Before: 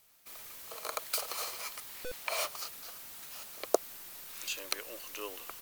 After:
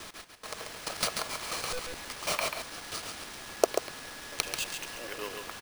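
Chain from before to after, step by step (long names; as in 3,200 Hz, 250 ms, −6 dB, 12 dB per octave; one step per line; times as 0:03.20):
slices reordered back to front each 108 ms, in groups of 4
bad sample-rate conversion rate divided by 3×, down none, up hold
single-tap delay 138 ms −6 dB
level +3 dB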